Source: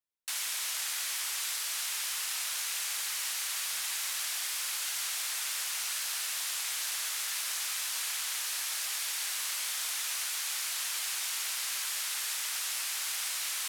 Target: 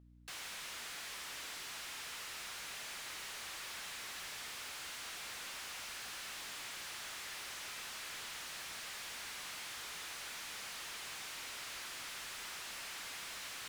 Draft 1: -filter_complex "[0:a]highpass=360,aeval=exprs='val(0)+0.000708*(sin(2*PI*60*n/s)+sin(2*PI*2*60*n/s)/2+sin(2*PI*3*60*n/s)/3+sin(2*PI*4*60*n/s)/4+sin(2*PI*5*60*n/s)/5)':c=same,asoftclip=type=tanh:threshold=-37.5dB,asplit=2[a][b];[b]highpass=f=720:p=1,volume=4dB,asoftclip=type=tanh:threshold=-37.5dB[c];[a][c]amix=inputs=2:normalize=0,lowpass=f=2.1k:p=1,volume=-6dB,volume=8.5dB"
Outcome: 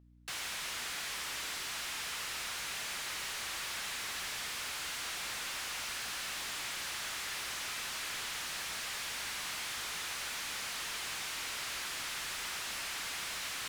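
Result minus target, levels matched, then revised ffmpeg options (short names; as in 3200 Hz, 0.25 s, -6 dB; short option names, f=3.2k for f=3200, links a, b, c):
soft clip: distortion -4 dB
-filter_complex "[0:a]highpass=360,aeval=exprs='val(0)+0.000708*(sin(2*PI*60*n/s)+sin(2*PI*2*60*n/s)/2+sin(2*PI*3*60*n/s)/3+sin(2*PI*4*60*n/s)/4+sin(2*PI*5*60*n/s)/5)':c=same,asoftclip=type=tanh:threshold=-47.5dB,asplit=2[a][b];[b]highpass=f=720:p=1,volume=4dB,asoftclip=type=tanh:threshold=-37.5dB[c];[a][c]amix=inputs=2:normalize=0,lowpass=f=2.1k:p=1,volume=-6dB,volume=8.5dB"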